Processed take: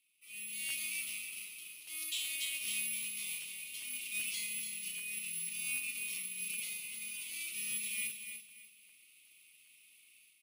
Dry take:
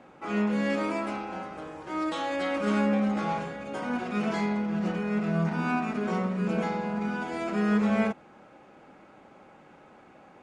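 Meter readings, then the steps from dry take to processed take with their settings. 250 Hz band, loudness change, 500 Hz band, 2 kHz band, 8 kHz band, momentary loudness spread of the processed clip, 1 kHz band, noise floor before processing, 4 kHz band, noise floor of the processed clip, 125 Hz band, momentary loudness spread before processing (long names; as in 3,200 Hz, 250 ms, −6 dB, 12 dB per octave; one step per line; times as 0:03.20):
−36.0 dB, −8.5 dB, below −40 dB, −6.0 dB, can't be measured, 9 LU, below −35 dB, −54 dBFS, +3.0 dB, −64 dBFS, −34.5 dB, 10 LU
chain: automatic gain control gain up to 14 dB
on a send: repeating echo 290 ms, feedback 29%, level −8 dB
on the sum: bad sample-rate conversion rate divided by 4×, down none, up zero stuff
elliptic high-pass filter 2,500 Hz, stop band 40 dB
high-frequency loss of the air 120 metres
regular buffer underruns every 0.39 s, samples 512, repeat, from 0:00.68
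level −7.5 dB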